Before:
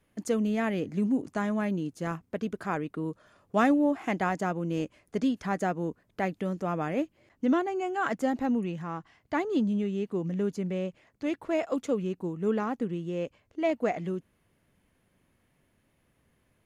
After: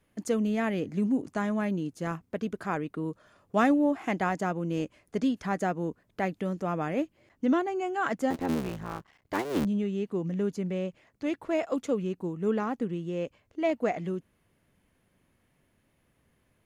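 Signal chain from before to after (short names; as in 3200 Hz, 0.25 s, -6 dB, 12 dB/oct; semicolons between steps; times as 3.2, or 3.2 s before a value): 8.3–9.65 cycle switcher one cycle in 3, muted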